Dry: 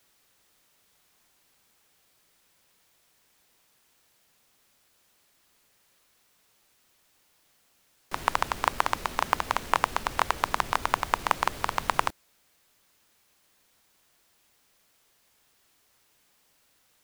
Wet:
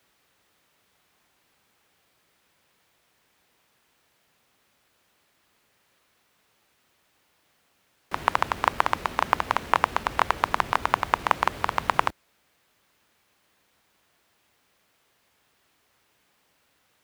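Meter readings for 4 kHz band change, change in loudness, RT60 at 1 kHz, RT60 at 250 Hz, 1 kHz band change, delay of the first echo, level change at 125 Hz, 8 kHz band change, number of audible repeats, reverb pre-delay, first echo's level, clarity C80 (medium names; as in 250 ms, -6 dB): 0.0 dB, +2.5 dB, no reverb, no reverb, +3.0 dB, no echo, +2.5 dB, -4.5 dB, no echo, no reverb, no echo, no reverb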